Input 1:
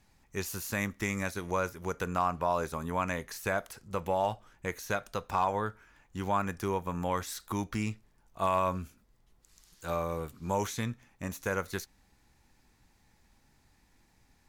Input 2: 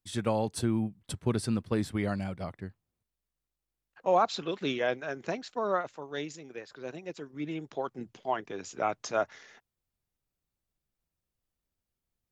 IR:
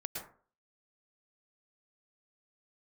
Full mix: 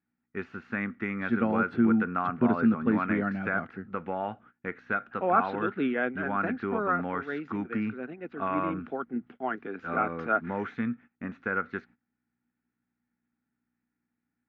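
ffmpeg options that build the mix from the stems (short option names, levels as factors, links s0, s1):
-filter_complex "[0:a]aeval=exprs='val(0)+0.000794*(sin(2*PI*60*n/s)+sin(2*PI*2*60*n/s)/2+sin(2*PI*3*60*n/s)/3+sin(2*PI*4*60*n/s)/4+sin(2*PI*5*60*n/s)/5)':c=same,volume=1.06[s0];[1:a]adelay=1150,volume=1.19[s1];[s0][s1]amix=inputs=2:normalize=0,agate=range=0.112:threshold=0.00316:ratio=16:detection=peak,highpass=170,equalizer=f=240:t=q:w=4:g=10,equalizer=f=580:t=q:w=4:g=-7,equalizer=f=980:t=q:w=4:g=-8,equalizer=f=1400:t=q:w=4:g=9,lowpass=f=2300:w=0.5412,lowpass=f=2300:w=1.3066"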